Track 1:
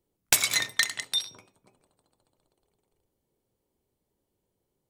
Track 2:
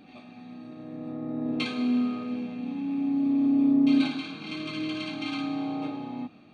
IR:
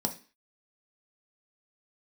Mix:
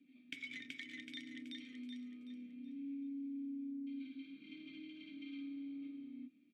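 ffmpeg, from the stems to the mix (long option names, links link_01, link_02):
-filter_complex "[0:a]bandreject=frequency=4100:width=8.6,volume=-1.5dB,asplit=2[link_01][link_02];[link_02]volume=-3.5dB[link_03];[1:a]alimiter=limit=-23.5dB:level=0:latency=1:release=429,volume=-9dB[link_04];[link_03]aecho=0:1:377|754|1131|1508|1885:1|0.32|0.102|0.0328|0.0105[link_05];[link_01][link_04][link_05]amix=inputs=3:normalize=0,acrossover=split=390|1400|4400[link_06][link_07][link_08][link_09];[link_06]acompressor=threshold=-44dB:ratio=4[link_10];[link_07]acompressor=threshold=-51dB:ratio=4[link_11];[link_08]acompressor=threshold=-36dB:ratio=4[link_12];[link_09]acompressor=threshold=-44dB:ratio=4[link_13];[link_10][link_11][link_12][link_13]amix=inputs=4:normalize=0,asplit=3[link_14][link_15][link_16];[link_14]bandpass=frequency=270:width_type=q:width=8,volume=0dB[link_17];[link_15]bandpass=frequency=2290:width_type=q:width=8,volume=-6dB[link_18];[link_16]bandpass=frequency=3010:width_type=q:width=8,volume=-9dB[link_19];[link_17][link_18][link_19]amix=inputs=3:normalize=0"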